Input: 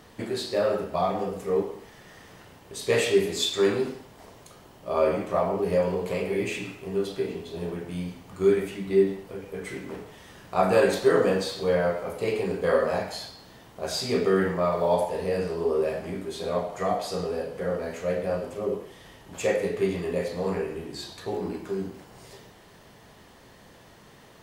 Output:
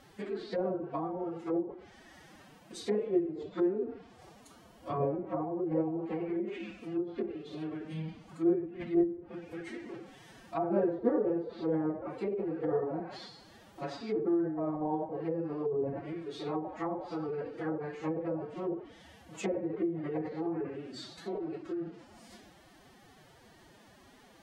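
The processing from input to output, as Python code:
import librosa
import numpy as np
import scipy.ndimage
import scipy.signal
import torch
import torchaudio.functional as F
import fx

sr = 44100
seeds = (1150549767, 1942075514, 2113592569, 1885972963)

y = fx.pitch_keep_formants(x, sr, semitones=10.0)
y = fx.env_lowpass_down(y, sr, base_hz=570.0, full_db=-23.0)
y = F.gain(torch.from_numpy(y), -5.5).numpy()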